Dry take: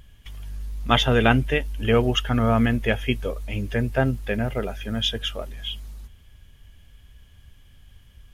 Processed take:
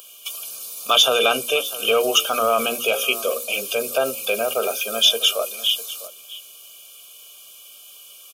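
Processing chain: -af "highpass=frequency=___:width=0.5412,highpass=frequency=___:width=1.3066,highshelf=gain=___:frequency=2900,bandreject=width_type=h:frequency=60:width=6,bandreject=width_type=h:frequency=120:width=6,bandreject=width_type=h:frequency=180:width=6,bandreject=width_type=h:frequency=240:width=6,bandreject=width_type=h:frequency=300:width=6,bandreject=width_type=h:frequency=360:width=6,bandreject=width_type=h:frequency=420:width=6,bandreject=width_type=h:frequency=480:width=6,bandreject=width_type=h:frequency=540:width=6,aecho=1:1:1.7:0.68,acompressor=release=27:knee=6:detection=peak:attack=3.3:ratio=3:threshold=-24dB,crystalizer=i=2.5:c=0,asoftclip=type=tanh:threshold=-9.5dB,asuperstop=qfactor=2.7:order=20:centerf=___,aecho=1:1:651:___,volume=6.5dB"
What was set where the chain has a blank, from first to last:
330, 330, 6, 1900, 0.141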